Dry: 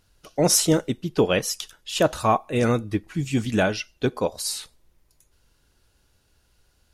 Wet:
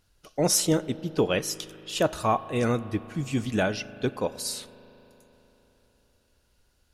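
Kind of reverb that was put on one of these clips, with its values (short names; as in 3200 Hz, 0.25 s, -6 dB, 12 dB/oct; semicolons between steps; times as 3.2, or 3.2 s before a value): spring tank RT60 3.9 s, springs 38 ms, chirp 75 ms, DRR 16 dB; gain -4 dB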